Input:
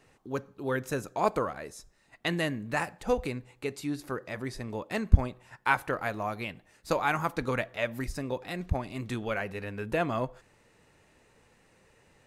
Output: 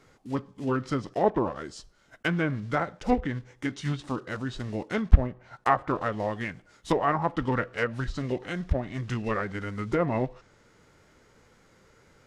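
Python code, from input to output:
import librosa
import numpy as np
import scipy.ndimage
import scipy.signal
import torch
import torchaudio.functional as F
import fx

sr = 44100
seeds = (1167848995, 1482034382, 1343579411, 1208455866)

y = fx.block_float(x, sr, bits=5)
y = fx.env_lowpass_down(y, sr, base_hz=2200.0, full_db=-24.0)
y = fx.formant_shift(y, sr, semitones=-4)
y = y * 10.0 ** (3.5 / 20.0)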